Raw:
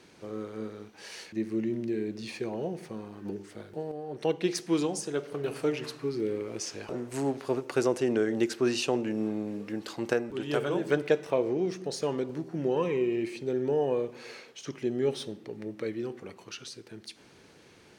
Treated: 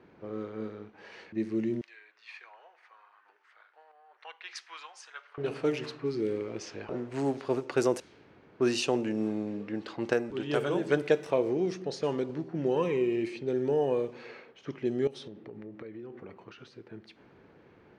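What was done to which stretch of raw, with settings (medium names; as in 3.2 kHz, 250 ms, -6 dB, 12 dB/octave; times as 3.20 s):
1.81–5.38 s: high-pass 1.1 kHz 24 dB/octave
8.00–8.60 s: room tone
15.07–16.82 s: compression 10:1, threshold -39 dBFS
whole clip: level-controlled noise filter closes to 1.5 kHz, open at -23.5 dBFS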